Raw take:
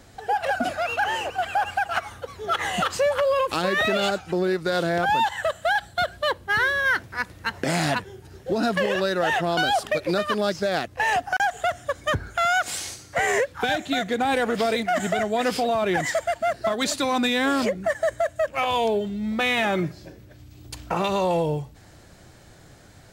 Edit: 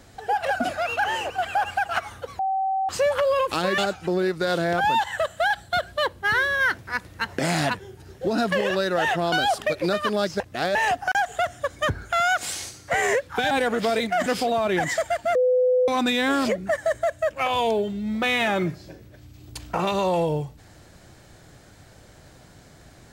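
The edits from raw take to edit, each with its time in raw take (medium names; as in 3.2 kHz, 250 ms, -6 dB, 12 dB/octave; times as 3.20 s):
2.39–2.89 s: bleep 769 Hz -21 dBFS
3.78–4.03 s: delete
10.65–11.00 s: reverse
13.76–14.27 s: delete
15.02–15.43 s: delete
16.52–17.05 s: bleep 504 Hz -16 dBFS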